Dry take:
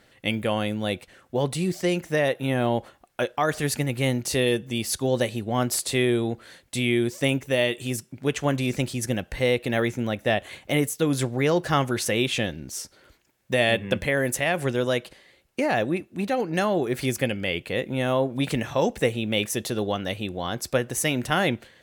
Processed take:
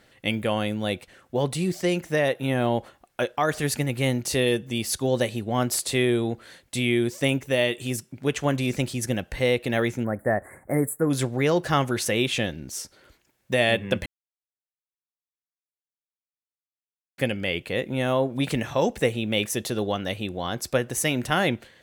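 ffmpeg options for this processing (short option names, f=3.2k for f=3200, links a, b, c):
-filter_complex "[0:a]asplit=3[a][b][c];[a]afade=t=out:st=10.03:d=0.02[d];[b]asuperstop=centerf=4000:order=12:qfactor=0.66,afade=t=in:st=10.03:d=0.02,afade=t=out:st=11.09:d=0.02[e];[c]afade=t=in:st=11.09:d=0.02[f];[d][e][f]amix=inputs=3:normalize=0,asplit=3[g][h][i];[g]atrim=end=14.06,asetpts=PTS-STARTPTS,afade=t=out:st=14.056:d=0.004:c=hsin[j];[h]atrim=start=14.06:end=17.18,asetpts=PTS-STARTPTS,volume=0[k];[i]atrim=start=17.18,asetpts=PTS-STARTPTS,afade=t=in:d=0.004:c=hsin[l];[j][k][l]concat=n=3:v=0:a=1"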